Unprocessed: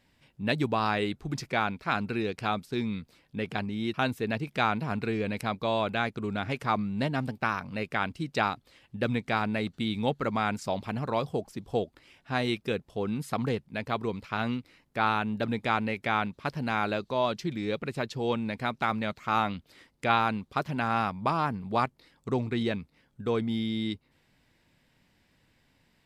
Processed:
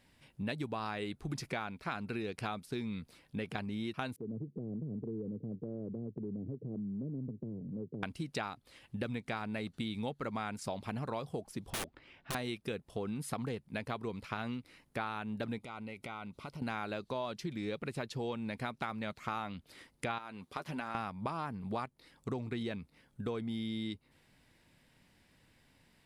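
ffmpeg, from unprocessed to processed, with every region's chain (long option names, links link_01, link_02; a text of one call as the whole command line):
ffmpeg -i in.wav -filter_complex "[0:a]asettb=1/sr,asplit=3[link_01][link_02][link_03];[link_01]atrim=end=4.164[link_04];[link_02]atrim=start=4.16:end=8.03,asetpts=PTS-STARTPTS,afade=type=in:duration=0.004:curve=qsin,afade=type=out:start_time=3.866:duration=0.004:curve=qsin,asuperpass=centerf=220:order=12:qfactor=0.59,acompressor=threshold=-37dB:ratio=3:attack=3.2:release=140:knee=1:detection=peak[link_05];[link_03]atrim=start=8.026[link_06];[link_04][link_05]acrossfade=duration=0.004:curve1=hsin:curve2=qsin[link_07];[link_07][link_06]acrossfade=duration=0.004:curve1=qsin:curve2=hsin,asettb=1/sr,asplit=3[link_08][link_09][link_10];[link_08]atrim=end=11.704[link_11];[link_09]atrim=start=11.7:end=12.35,asetpts=PTS-STARTPTS,afade=type=in:duration=0.004:curve=qsin,afade=type=out:start_time=0.646:duration=0.004:curve=qsin,lowpass=3100,aeval=exprs='(mod(29.9*val(0)+1,2)-1)/29.9':channel_layout=same[link_12];[link_10]atrim=start=12.346[link_13];[link_11][link_12]acrossfade=duration=0.004:curve1=hsin:curve2=qsin[link_14];[link_14][link_13]acrossfade=duration=0.004:curve1=qsin:curve2=hsin,asettb=1/sr,asplit=3[link_15][link_16][link_17];[link_15]atrim=end=15.584[link_18];[link_16]atrim=start=15.58:end=16.62,asetpts=PTS-STARTPTS,afade=type=in:duration=0.004:curve=qsin,afade=type=out:start_time=1.036:duration=0.004:curve=qsin,asuperstop=centerf=1700:order=8:qfactor=5.1,acompressor=threshold=-42dB:ratio=5:attack=3.2:release=140:knee=1:detection=peak[link_19];[link_17]atrim=start=16.616[link_20];[link_18][link_19]acrossfade=duration=0.004:curve1=hsin:curve2=qsin[link_21];[link_21][link_20]acrossfade=duration=0.004:curve1=qsin:curve2=hsin,asettb=1/sr,asplit=3[link_22][link_23][link_24];[link_22]atrim=end=20.184[link_25];[link_23]atrim=start=20.18:end=20.95,asetpts=PTS-STARTPTS,afade=type=in:duration=0.004:curve=qsin,afade=type=out:start_time=0.766:duration=0.004:curve=qsin,highpass=frequency=270:poles=1,acompressor=threshold=-38dB:ratio=2:attack=3.2:release=140:knee=1:detection=peak,asplit=2[link_26][link_27];[link_27]adelay=12,volume=-10dB[link_28];[link_26][link_28]amix=inputs=2:normalize=0,atrim=end_sample=33957[link_29];[link_24]atrim=start=20.946[link_30];[link_25][link_29]acrossfade=duration=0.004:curve1=hsin:curve2=qsin[link_31];[link_31][link_30]acrossfade=duration=0.004:curve1=qsin:curve2=hsin,equalizer=frequency=9800:width=3.5:gain=8.5,acompressor=threshold=-35dB:ratio=6" out.wav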